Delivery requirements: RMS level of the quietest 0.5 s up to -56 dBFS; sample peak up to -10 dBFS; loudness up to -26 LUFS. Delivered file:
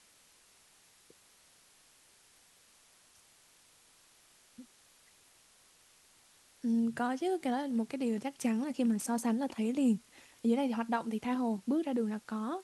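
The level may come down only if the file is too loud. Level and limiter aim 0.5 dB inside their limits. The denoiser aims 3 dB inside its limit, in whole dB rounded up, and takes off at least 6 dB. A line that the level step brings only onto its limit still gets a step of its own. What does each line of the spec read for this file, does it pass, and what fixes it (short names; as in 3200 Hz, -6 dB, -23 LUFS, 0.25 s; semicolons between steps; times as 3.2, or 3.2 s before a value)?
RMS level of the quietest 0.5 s -64 dBFS: OK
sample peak -19.5 dBFS: OK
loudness -33.5 LUFS: OK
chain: none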